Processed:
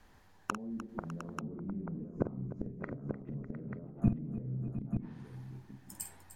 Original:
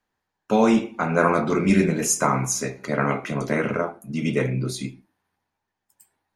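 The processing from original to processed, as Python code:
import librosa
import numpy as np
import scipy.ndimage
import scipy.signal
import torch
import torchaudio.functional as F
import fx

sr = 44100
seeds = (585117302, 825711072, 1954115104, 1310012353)

p1 = fx.over_compress(x, sr, threshold_db=-26.0, ratio=-0.5)
p2 = x + F.gain(torch.from_numpy(p1), 0.0).numpy()
p3 = fx.low_shelf(p2, sr, hz=260.0, db=3.0)
p4 = fx.env_lowpass_down(p3, sr, base_hz=310.0, full_db=-17.0)
p5 = fx.gate_flip(p4, sr, shuts_db=-21.0, range_db=-31)
p6 = fx.low_shelf(p5, sr, hz=100.0, db=11.0)
p7 = p6 + fx.echo_multitap(p6, sr, ms=(48, 301, 602, 707, 888), db=(-9.5, -14.5, -16.5, -12.5, -7.0), dry=0)
y = F.gain(torch.from_numpy(p7), 5.0).numpy()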